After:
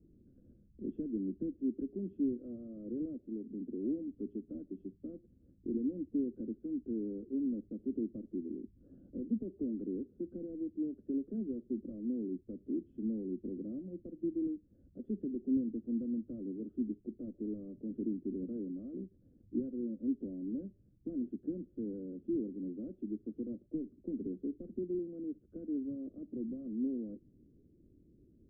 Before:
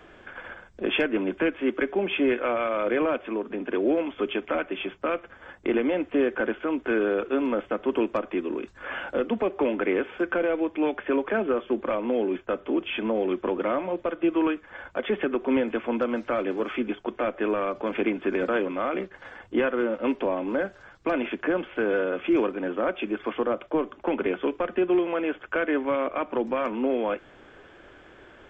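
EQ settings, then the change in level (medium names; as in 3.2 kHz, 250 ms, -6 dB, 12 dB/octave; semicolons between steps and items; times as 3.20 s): inverse Chebyshev low-pass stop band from 870 Hz, stop band 60 dB; dynamic bell 150 Hz, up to -3 dB, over -54 dBFS, Q 4.2; tilt EQ +2 dB/octave; +1.5 dB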